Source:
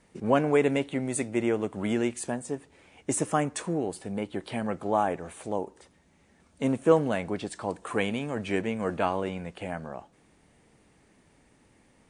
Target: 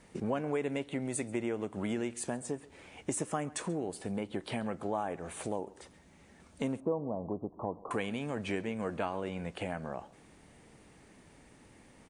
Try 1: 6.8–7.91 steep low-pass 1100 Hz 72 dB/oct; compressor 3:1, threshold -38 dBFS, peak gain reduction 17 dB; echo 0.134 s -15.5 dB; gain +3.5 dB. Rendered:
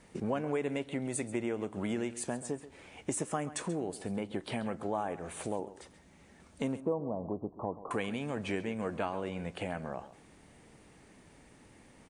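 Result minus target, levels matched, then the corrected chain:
echo-to-direct +6.5 dB
6.8–7.91 steep low-pass 1100 Hz 72 dB/oct; compressor 3:1, threshold -38 dBFS, peak gain reduction 17 dB; echo 0.134 s -22 dB; gain +3.5 dB

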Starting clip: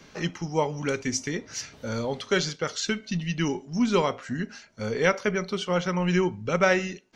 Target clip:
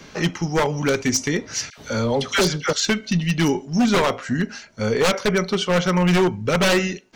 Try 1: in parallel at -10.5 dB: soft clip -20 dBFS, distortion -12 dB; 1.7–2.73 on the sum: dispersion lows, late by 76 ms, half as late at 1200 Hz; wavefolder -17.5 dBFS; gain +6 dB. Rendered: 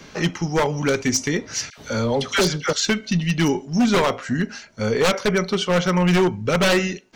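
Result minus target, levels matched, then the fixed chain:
soft clip: distortion +9 dB
in parallel at -10.5 dB: soft clip -11.5 dBFS, distortion -21 dB; 1.7–2.73 on the sum: dispersion lows, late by 76 ms, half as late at 1200 Hz; wavefolder -17.5 dBFS; gain +6 dB

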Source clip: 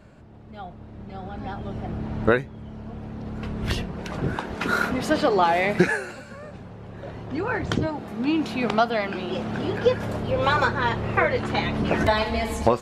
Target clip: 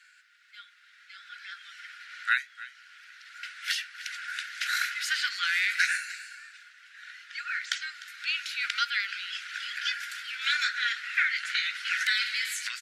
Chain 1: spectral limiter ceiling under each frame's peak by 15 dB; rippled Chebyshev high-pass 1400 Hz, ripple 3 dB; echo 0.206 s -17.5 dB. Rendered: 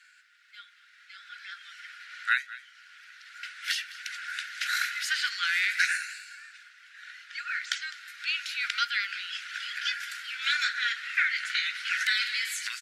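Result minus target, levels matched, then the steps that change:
echo 95 ms early
change: echo 0.301 s -17.5 dB

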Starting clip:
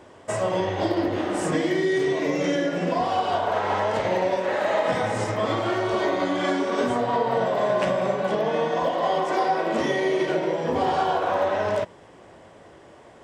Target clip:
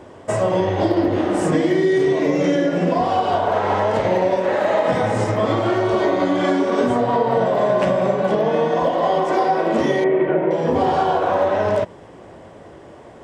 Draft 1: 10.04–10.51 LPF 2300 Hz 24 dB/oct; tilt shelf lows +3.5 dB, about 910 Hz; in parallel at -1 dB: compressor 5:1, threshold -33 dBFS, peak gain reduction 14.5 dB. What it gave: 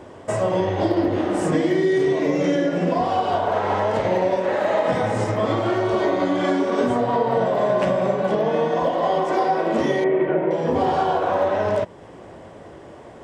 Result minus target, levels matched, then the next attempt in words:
compressor: peak gain reduction +9 dB
10.04–10.51 LPF 2300 Hz 24 dB/oct; tilt shelf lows +3.5 dB, about 910 Hz; in parallel at -1 dB: compressor 5:1, threshold -22 dBFS, peak gain reduction 6 dB

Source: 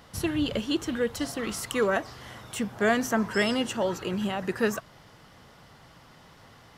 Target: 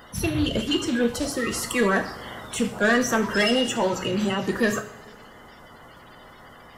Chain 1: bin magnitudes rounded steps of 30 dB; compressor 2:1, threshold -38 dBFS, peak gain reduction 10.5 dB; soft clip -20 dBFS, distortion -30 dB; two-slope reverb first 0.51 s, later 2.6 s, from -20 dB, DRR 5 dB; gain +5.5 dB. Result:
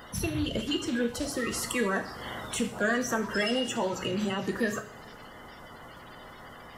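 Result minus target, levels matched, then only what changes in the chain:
compressor: peak gain reduction +10.5 dB
remove: compressor 2:1, threshold -38 dBFS, peak gain reduction 10.5 dB

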